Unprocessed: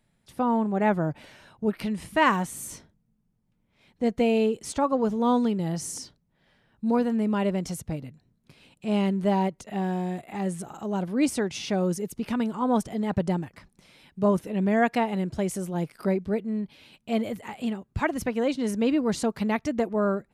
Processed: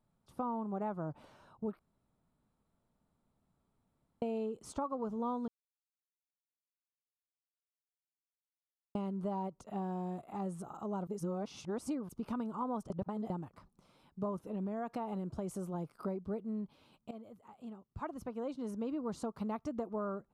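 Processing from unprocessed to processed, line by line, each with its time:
1.79–4.22 room tone
5.48–8.95 mute
11.07–12.09 reverse
12.9–13.3 reverse
14.51–15.97 compressor, threshold -24 dBFS
17.11–19.9 fade in, from -17.5 dB
whole clip: resonant high shelf 1500 Hz -6.5 dB, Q 3; compressor, threshold -26 dBFS; gain -8 dB

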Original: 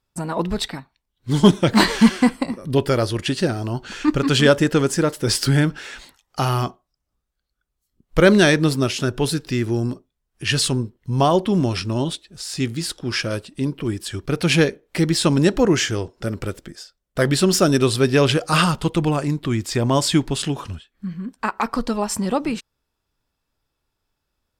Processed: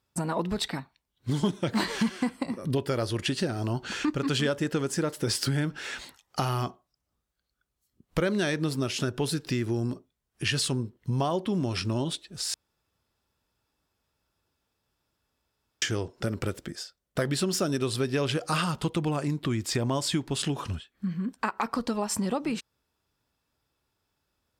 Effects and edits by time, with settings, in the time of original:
12.54–15.82 room tone
whole clip: HPF 61 Hz; compressor 4:1, threshold -26 dBFS

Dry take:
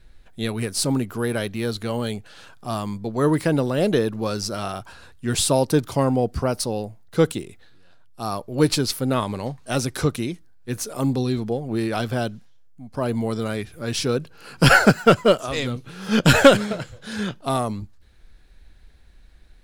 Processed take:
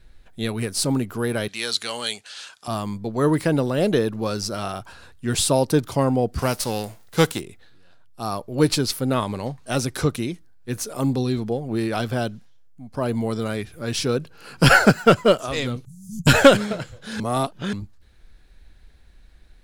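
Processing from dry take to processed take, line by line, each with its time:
1.48–2.68 weighting filter ITU-R 468
6.38–7.39 spectral whitening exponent 0.6
15.85–16.27 Chebyshev band-stop 170–6900 Hz, order 4
17.2–17.73 reverse

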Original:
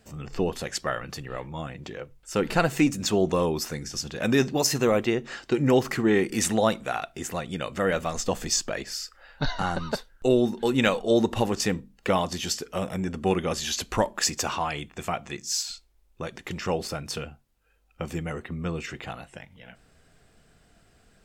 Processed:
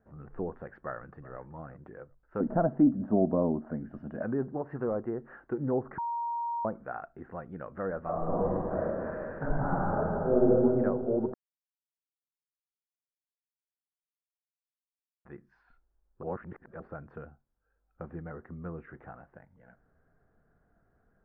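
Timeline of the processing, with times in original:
0.82–1.38 echo throw 0.38 s, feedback 15%, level -17 dB
2.4–4.22 small resonant body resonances 240/620/2900 Hz, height 15 dB, ringing for 40 ms
5.98–6.65 bleep 939 Hz -20.5 dBFS
8.01–10.43 reverb throw, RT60 2.9 s, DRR -10.5 dB
11.34–15.25 mute
16.23–16.8 reverse
18.95–19.35 CVSD 32 kbps
whole clip: Chebyshev low-pass 1600 Hz, order 4; treble ducked by the level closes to 1000 Hz, closed at -19.5 dBFS; gain -8.5 dB

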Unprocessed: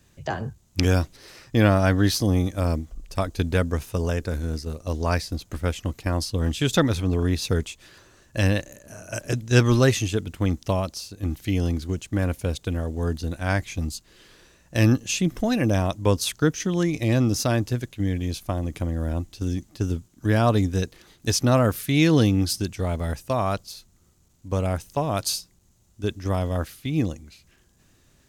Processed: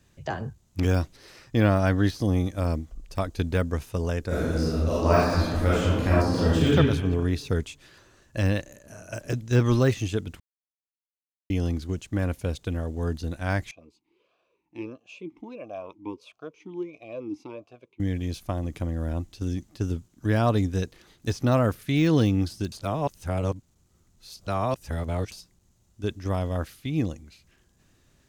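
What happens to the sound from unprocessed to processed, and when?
4.27–6.67 reverb throw, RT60 1.3 s, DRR -8.5 dB
10.4–11.5 mute
13.71–18 vowel sweep a-u 1.5 Hz
22.72–25.32 reverse
whole clip: de-esser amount 70%; high shelf 6600 Hz -4.5 dB; gain -2.5 dB

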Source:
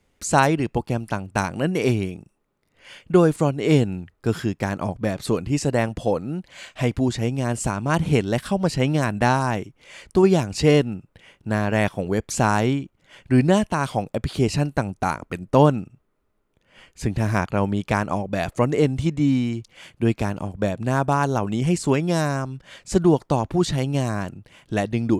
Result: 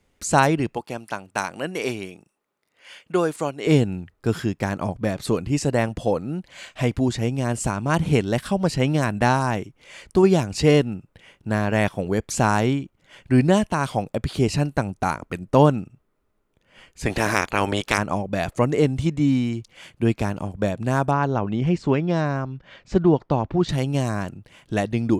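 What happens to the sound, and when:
0.74–3.67 HPF 590 Hz 6 dB/oct
17.05–17.97 spectral limiter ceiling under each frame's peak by 21 dB
21.11–23.69 air absorption 200 m

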